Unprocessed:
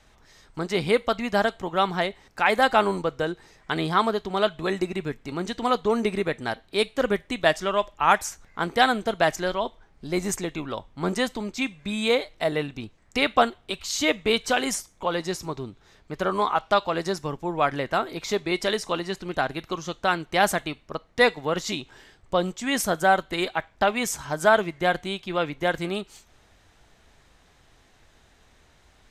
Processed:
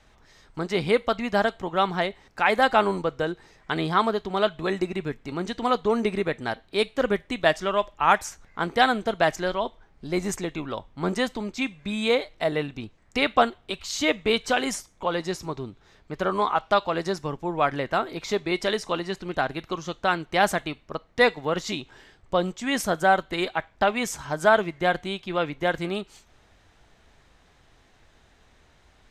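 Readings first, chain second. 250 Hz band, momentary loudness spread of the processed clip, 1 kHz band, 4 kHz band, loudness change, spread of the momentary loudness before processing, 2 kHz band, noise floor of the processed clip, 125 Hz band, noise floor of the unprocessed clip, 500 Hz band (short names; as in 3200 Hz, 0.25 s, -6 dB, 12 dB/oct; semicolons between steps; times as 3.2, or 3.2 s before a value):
0.0 dB, 11 LU, 0.0 dB, -1.5 dB, -0.5 dB, 11 LU, -0.5 dB, -59 dBFS, 0.0 dB, -59 dBFS, 0.0 dB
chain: high shelf 7300 Hz -7.5 dB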